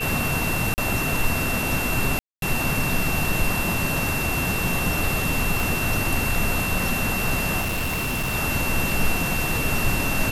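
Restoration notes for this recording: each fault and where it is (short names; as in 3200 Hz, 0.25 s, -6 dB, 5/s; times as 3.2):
tone 2700 Hz -27 dBFS
0.74–0.78 gap 39 ms
2.19–2.42 gap 0.232 s
5.6 pop
7.6–8.35 clipped -21.5 dBFS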